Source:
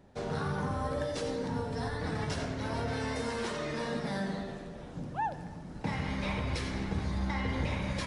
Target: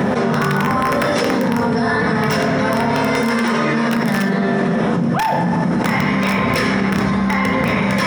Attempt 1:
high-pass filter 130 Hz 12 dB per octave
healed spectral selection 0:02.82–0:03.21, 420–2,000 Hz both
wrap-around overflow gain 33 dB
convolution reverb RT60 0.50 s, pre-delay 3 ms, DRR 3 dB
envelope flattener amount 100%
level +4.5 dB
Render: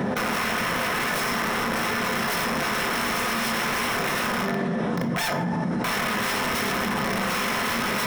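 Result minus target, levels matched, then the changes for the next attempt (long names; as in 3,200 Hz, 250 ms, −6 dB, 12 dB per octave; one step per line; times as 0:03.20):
wrap-around overflow: distortion +27 dB
change: wrap-around overflow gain 25 dB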